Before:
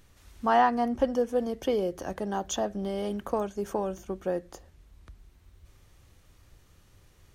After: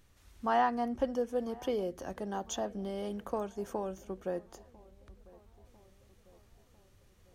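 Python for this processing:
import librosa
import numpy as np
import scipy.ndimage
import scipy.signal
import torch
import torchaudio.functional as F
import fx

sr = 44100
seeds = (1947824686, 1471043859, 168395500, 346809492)

y = fx.echo_filtered(x, sr, ms=998, feedback_pct=57, hz=2200.0, wet_db=-23)
y = y * 10.0 ** (-6.0 / 20.0)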